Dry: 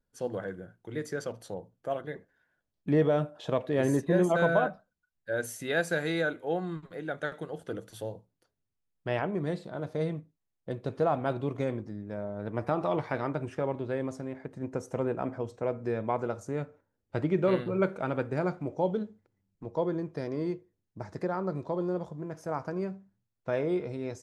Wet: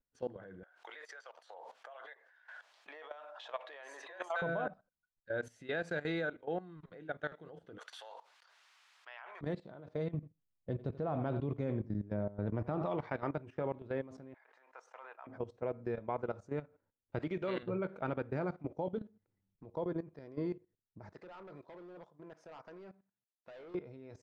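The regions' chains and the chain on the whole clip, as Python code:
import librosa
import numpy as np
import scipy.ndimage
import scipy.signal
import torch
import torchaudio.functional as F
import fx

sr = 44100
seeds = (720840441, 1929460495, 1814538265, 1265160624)

y = fx.chain(x, sr, fx.highpass(hz=760.0, slope=24),
    fx.pre_swell(db_per_s=25.0), at=(0.63, 4.42))
y = fx.chain(y, sr, fx.highpass(hz=950.0, slope=24),
    fx.env_flatten(amount_pct=70), at=(7.78, 9.41))
y = fx.chain(y, sr, fx.low_shelf(hz=350.0, db=9.0),
    fx.echo_single(ms=86, db=-15.0), at=(10.14, 12.86))
y = fx.chain(y, sr, fx.highpass(hz=860.0, slope=24),
    fx.high_shelf(hz=6600.0, db=-10.5),
    fx.sustainer(db_per_s=83.0), at=(14.34, 15.27))
y = fx.chain(y, sr, fx.highpass(hz=160.0, slope=12),
    fx.high_shelf(hz=2000.0, db=11.5), at=(17.19, 17.63))
y = fx.chain(y, sr, fx.highpass(hz=700.0, slope=6),
    fx.clip_hard(threshold_db=-36.5), at=(21.13, 23.75))
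y = scipy.signal.sosfilt(scipy.signal.butter(2, 3900.0, 'lowpass', fs=sr, output='sos'), y)
y = fx.level_steps(y, sr, step_db=16)
y = y * librosa.db_to_amplitude(-3.0)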